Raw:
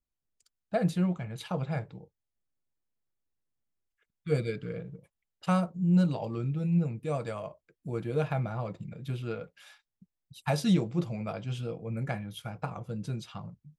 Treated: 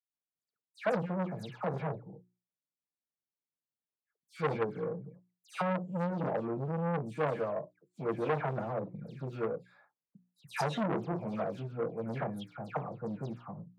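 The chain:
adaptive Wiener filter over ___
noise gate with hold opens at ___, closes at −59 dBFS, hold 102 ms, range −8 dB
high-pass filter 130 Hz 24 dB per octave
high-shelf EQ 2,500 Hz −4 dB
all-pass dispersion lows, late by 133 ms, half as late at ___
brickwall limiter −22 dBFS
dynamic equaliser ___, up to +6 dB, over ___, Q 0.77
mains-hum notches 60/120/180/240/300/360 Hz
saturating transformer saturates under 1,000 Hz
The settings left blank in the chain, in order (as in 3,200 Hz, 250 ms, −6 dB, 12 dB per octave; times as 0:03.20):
15 samples, −56 dBFS, 2,300 Hz, 510 Hz, −44 dBFS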